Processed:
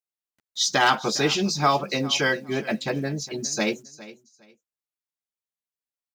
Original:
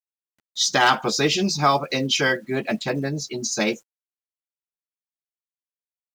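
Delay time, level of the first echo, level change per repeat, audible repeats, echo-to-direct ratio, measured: 408 ms, -18.0 dB, -13.0 dB, 2, -18.0 dB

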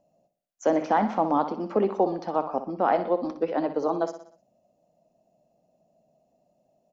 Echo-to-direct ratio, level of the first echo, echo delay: -10.0 dB, -11.0 dB, 61 ms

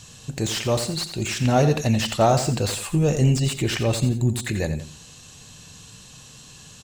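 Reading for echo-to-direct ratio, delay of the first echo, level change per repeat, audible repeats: -10.0 dB, 86 ms, -8.0 dB, 2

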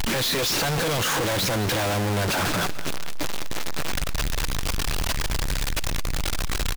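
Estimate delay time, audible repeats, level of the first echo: 214 ms, 2, -16.5 dB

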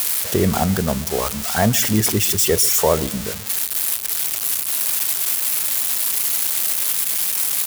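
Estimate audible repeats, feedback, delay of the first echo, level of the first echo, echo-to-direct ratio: 2, 41%, 138 ms, -21.0 dB, -20.0 dB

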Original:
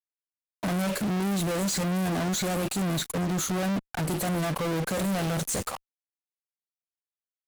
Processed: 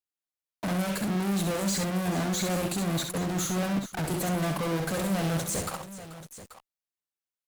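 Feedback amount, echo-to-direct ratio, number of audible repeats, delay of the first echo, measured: no regular repeats, -5.0 dB, 3, 66 ms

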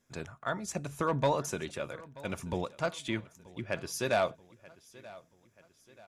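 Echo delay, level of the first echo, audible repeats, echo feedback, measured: 932 ms, -20.5 dB, 3, 46%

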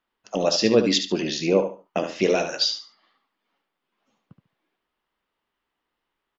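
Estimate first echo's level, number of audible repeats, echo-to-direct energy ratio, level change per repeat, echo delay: -8.5 dB, 3, -8.0 dB, -12.5 dB, 72 ms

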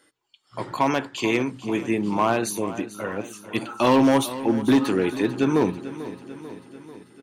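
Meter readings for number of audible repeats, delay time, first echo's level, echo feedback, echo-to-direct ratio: 5, 442 ms, -14.5 dB, 60%, -12.5 dB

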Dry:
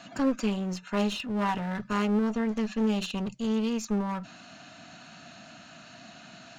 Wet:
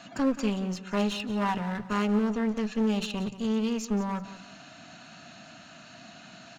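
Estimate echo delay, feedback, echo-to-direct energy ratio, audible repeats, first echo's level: 179 ms, 29%, -14.0 dB, 2, -14.5 dB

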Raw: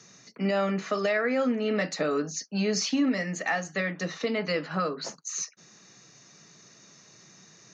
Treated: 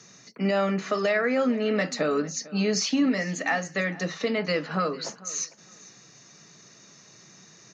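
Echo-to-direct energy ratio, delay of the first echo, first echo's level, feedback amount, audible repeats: -20.0 dB, 450 ms, -20.0 dB, 19%, 2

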